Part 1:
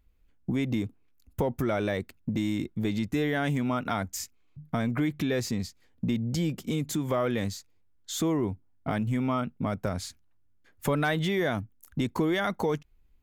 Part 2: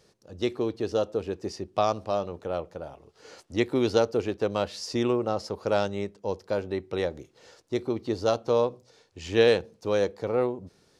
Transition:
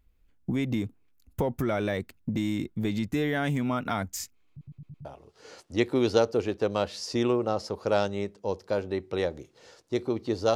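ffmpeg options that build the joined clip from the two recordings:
-filter_complex "[0:a]apad=whole_dur=10.55,atrim=end=10.55,asplit=5[s0][s1][s2][s3][s4];[s0]atrim=end=4.612[s5];[s1]atrim=start=4.498:end=4.612[s6];[s2]atrim=start=4.498:end=4.612[s7];[s3]atrim=start=4.498:end=4.612[s8];[s4]atrim=start=4.498:end=4.612[s9];[1:a]atrim=start=2.848:end=8.35[s10];[s5][s6]acrossfade=d=0.004:c1=hsin:c2=hsin[s11];[s11][s7]acrossfade=d=0.004:c1=hsin:c2=hsin[s12];[s12][s8]acrossfade=d=0.004:c1=hsin:c2=hsin[s13];[s13][s9]acrossfade=d=0.004:c1=hsin:c2=hsin[s14];[s14][s10]acrossfade=d=0.004:c1=hsin:c2=hsin"

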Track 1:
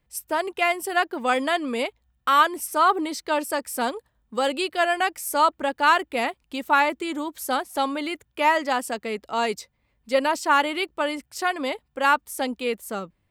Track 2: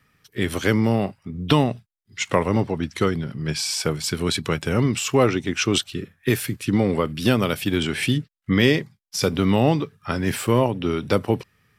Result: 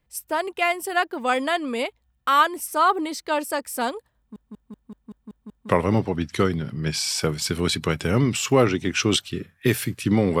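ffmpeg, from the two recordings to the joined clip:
-filter_complex "[0:a]apad=whole_dur=10.4,atrim=end=10.4,asplit=8[s0][s1][s2][s3][s4][s5][s6][s7];[s0]atrim=end=4.362[s8];[s1]atrim=start=4.168:end=4.362[s9];[s2]atrim=start=4.168:end=4.362[s10];[s3]atrim=start=4.168:end=4.362[s11];[s4]atrim=start=4.168:end=4.362[s12];[s5]atrim=start=4.168:end=4.362[s13];[s6]atrim=start=4.168:end=4.362[s14];[s7]atrim=start=4.168:end=4.362[s15];[1:a]atrim=start=2.308:end=7.02[s16];[s8][s9]acrossfade=d=0.004:c1=hsin:c2=hsin[s17];[s17][s10]acrossfade=d=0.004:c1=hsin:c2=hsin[s18];[s18][s11]acrossfade=d=0.004:c1=hsin:c2=hsin[s19];[s19][s12]acrossfade=d=0.004:c1=hsin:c2=hsin[s20];[s20][s13]acrossfade=d=0.004:c1=hsin:c2=hsin[s21];[s21][s14]acrossfade=d=0.004:c1=hsin:c2=hsin[s22];[s22][s15]acrossfade=d=0.004:c1=hsin:c2=hsin[s23];[s23][s16]acrossfade=d=0.004:c1=hsin:c2=hsin"

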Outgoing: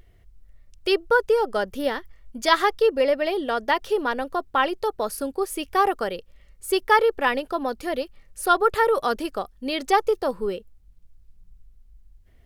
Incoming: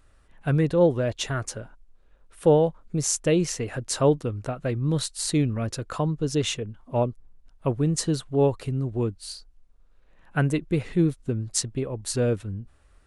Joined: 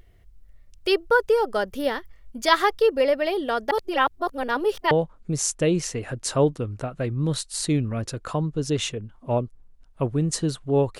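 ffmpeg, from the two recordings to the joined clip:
-filter_complex "[0:a]apad=whole_dur=10.99,atrim=end=10.99,asplit=2[s0][s1];[s0]atrim=end=3.712[s2];[s1]atrim=start=3.708:end=4.912,asetpts=PTS-STARTPTS,areverse[s3];[1:a]atrim=start=2.558:end=8.64[s4];[s2][s3]acrossfade=d=0.004:c1=hsin:c2=hsin[s5];[s5][s4]acrossfade=d=0.004:c1=hsin:c2=hsin"

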